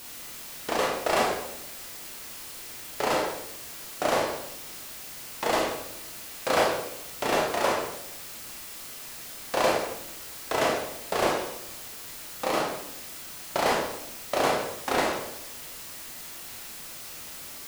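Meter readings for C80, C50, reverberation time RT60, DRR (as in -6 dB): 6.5 dB, 3.0 dB, 0.80 s, -1.5 dB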